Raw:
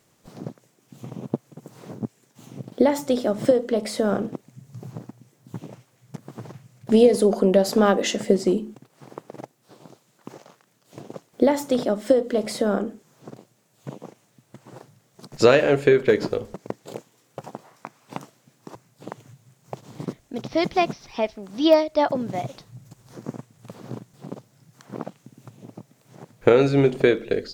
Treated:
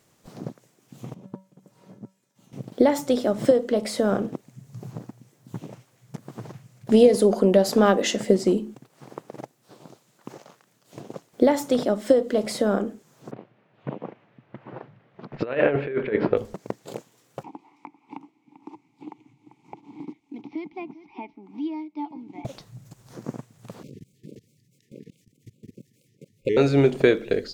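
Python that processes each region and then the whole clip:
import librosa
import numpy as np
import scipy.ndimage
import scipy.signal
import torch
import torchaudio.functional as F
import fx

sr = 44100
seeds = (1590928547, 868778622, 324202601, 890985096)

y = fx.chain(x, sr, fx.self_delay(depth_ms=0.35),
    fx.comb_fb(f0_hz=190.0, decay_s=0.31, harmonics='odd', damping=0.0, mix_pct=80), at=(1.14, 2.53))
y = fx.chain(y, sr, fx.lowpass(hz=2700.0, slope=24),
    fx.low_shelf(hz=84.0, db=-9.5),
    fx.over_compress(threshold_db=-21.0, ratio=-0.5), at=(13.31, 16.37))
y = fx.chain(y, sr, fx.vowel_filter(vowel='u'),
    fx.echo_single(ms=393, db=-21.0),
    fx.band_squash(depth_pct=70), at=(17.43, 22.45))
y = fx.chain(y, sr, fx.level_steps(step_db=21),
    fx.brickwall_bandstop(low_hz=530.0, high_hz=1900.0),
    fx.vibrato_shape(shape='square', rate_hz=4.7, depth_cents=160.0), at=(23.83, 26.57))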